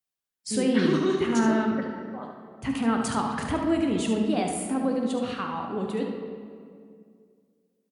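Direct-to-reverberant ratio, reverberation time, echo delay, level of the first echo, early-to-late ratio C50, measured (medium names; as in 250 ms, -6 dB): 1.0 dB, 2.3 s, 72 ms, -8.0 dB, 2.5 dB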